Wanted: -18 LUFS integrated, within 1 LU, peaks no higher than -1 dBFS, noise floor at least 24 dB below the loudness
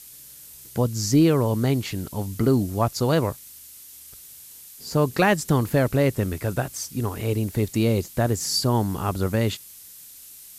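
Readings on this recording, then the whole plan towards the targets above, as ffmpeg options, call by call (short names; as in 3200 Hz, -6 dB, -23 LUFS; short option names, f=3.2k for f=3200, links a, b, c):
noise floor -45 dBFS; noise floor target -48 dBFS; loudness -23.5 LUFS; peak -9.0 dBFS; loudness target -18.0 LUFS
-> -af "afftdn=nr=6:nf=-45"
-af "volume=5.5dB"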